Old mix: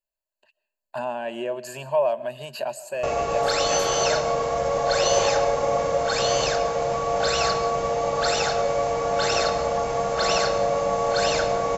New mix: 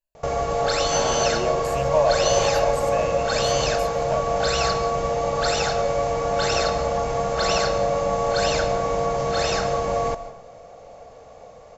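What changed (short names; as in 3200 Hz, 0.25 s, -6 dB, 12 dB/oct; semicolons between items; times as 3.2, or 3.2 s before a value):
background: entry -2.80 s; master: add low shelf 140 Hz +9 dB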